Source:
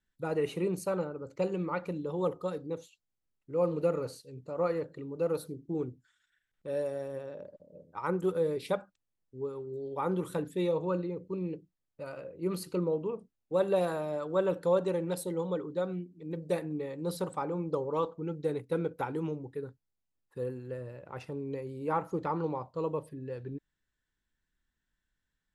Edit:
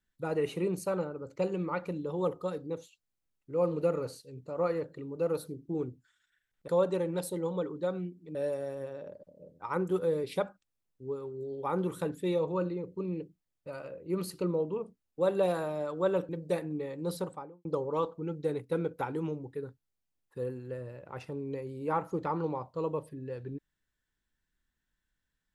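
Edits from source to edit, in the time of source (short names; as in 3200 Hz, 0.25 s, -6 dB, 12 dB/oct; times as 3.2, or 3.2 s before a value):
14.62–16.29 move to 6.68
17.11–17.65 studio fade out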